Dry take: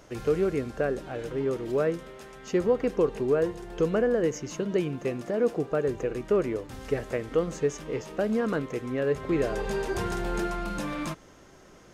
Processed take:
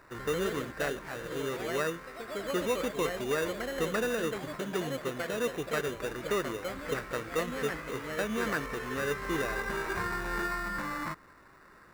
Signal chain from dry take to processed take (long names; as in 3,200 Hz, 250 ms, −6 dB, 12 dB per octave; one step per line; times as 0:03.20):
sample-rate reduction 3,200 Hz, jitter 0%
flat-topped bell 1,400 Hz +11 dB 1.3 octaves
delay with pitch and tempo change per echo 91 ms, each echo +2 semitones, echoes 3, each echo −6 dB
level −7.5 dB